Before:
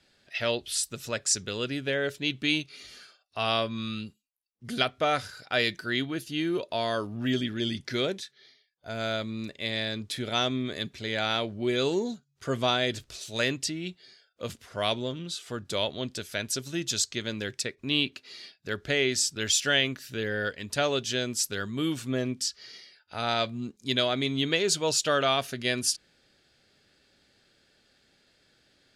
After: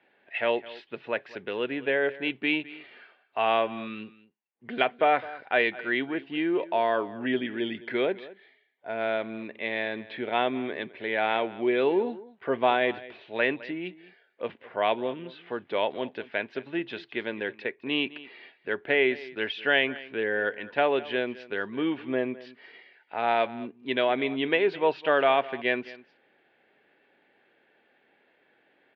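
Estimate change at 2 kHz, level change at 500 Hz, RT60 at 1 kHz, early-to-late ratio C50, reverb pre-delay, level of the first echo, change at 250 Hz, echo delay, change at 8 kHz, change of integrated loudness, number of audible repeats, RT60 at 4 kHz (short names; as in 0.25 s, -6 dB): +3.0 dB, +4.0 dB, none, none, none, -18.5 dB, 0.0 dB, 0.21 s, under -40 dB, +0.5 dB, 1, none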